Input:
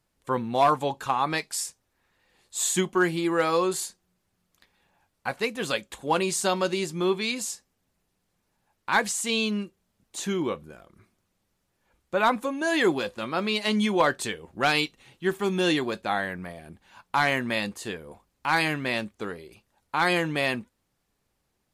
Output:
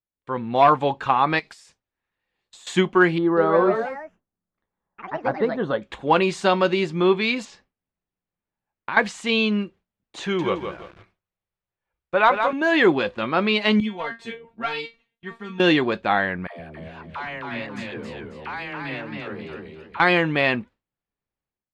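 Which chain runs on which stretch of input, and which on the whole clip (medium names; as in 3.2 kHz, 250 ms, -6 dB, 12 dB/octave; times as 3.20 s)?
1.39–2.67 s: treble shelf 5.2 kHz +10 dB + compression 16:1, threshold -36 dBFS + hard clipper -32.5 dBFS
3.18–5.82 s: boxcar filter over 18 samples + ever faster or slower copies 189 ms, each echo +3 st, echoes 3, each echo -6 dB
7.45–8.97 s: compression 12:1, threshold -29 dBFS + distance through air 86 m
10.22–12.53 s: peaking EQ 250 Hz -15 dB 0.49 oct + bit-crushed delay 167 ms, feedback 35%, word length 8-bit, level -6.5 dB
13.80–15.60 s: peaking EQ 170 Hz +5.5 dB 0.3 oct + feedback comb 230 Hz, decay 0.19 s, mix 100%
16.47–20.00 s: compression 4:1, threshold -38 dBFS + phase dispersion lows, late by 132 ms, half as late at 390 Hz + modulated delay 269 ms, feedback 34%, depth 102 cents, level -3 dB
whole clip: Chebyshev low-pass 2.7 kHz, order 2; gate with hold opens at -48 dBFS; level rider gain up to 10 dB; trim -2 dB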